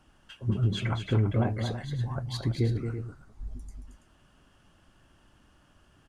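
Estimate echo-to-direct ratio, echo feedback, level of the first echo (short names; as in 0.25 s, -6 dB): -5.5 dB, no steady repeat, -7.0 dB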